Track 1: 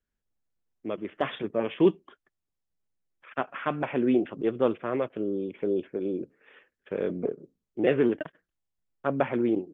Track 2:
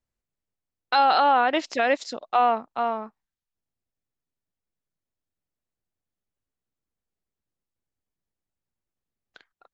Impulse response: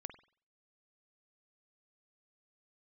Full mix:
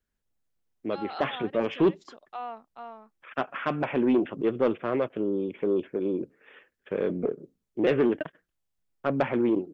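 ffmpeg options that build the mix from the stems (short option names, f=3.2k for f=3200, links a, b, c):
-filter_complex "[0:a]asoftclip=type=tanh:threshold=-17.5dB,volume=2.5dB,asplit=2[a][b];[1:a]volume=-16.5dB[c];[b]apad=whole_len=429399[d];[c][d]sidechaincompress=threshold=-35dB:ratio=4:attack=41:release=187[e];[a][e]amix=inputs=2:normalize=0"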